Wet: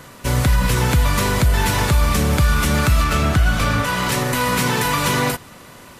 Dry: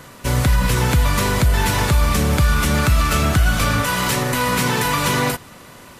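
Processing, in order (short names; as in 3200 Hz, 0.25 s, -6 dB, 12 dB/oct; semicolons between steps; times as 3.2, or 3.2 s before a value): 3.04–4.12 high shelf 6200 Hz -7.5 dB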